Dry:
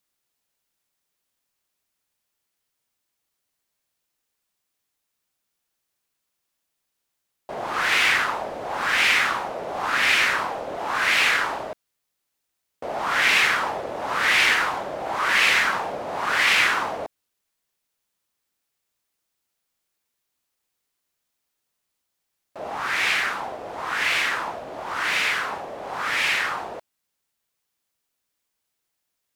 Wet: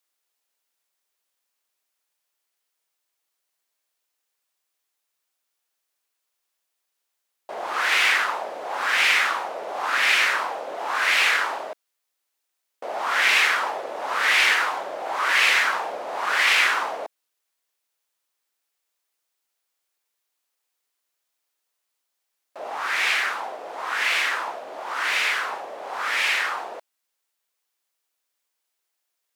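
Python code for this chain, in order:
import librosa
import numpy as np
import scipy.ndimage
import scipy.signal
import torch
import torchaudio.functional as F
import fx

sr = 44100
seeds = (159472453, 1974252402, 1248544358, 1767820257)

y = scipy.signal.sosfilt(scipy.signal.butter(2, 430.0, 'highpass', fs=sr, output='sos'), x)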